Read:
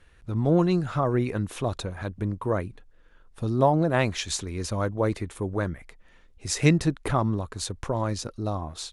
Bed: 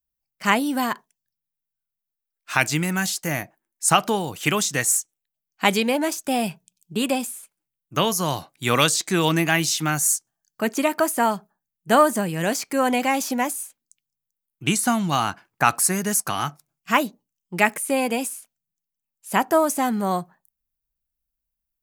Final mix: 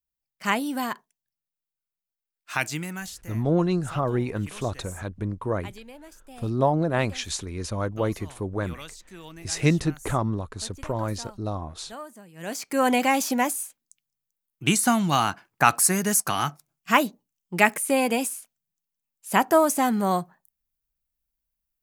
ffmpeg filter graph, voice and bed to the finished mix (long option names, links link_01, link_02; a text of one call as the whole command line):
ffmpeg -i stem1.wav -i stem2.wav -filter_complex "[0:a]adelay=3000,volume=-1dB[link_01];[1:a]volume=18.5dB,afade=type=out:start_time=2.43:duration=0.97:silence=0.11885,afade=type=in:start_time=12.34:duration=0.54:silence=0.0668344[link_02];[link_01][link_02]amix=inputs=2:normalize=0" out.wav